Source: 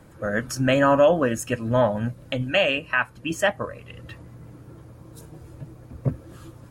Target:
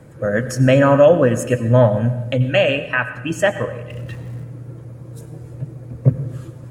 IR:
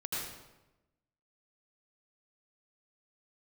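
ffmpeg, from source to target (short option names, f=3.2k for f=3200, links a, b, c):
-filter_complex "[0:a]asettb=1/sr,asplit=3[a][b][c];[a]atrim=end=3.904[d];[b]atrim=start=3.9:end=4.44,asetpts=PTS-STARTPTS,afade=t=in:d=0.004:c=qsin,afade=t=out:st=0.536:d=0.004:c=qsin,aeval=exprs='val(0)+0.5*0.00562*sgn(val(0))':c=same[e];[c]atrim=start=4.436[f];[d][e]acrossfade=d=0.004:c1=hsin:c2=qsin[g];[g][f]acrossfade=d=0.004:c1=qsin:c2=hsin,equalizer=f=125:t=o:w=1:g=12,equalizer=f=250:t=o:w=1:g=3,equalizer=f=500:t=o:w=1:g=9,equalizer=f=2k:t=o:w=1:g=5,equalizer=f=8k:t=o:w=1:g=5,asplit=2[h][i];[1:a]atrim=start_sample=2205,adelay=8[j];[i][j]afir=irnorm=-1:irlink=0,volume=-14.5dB[k];[h][k]amix=inputs=2:normalize=0,volume=-2dB"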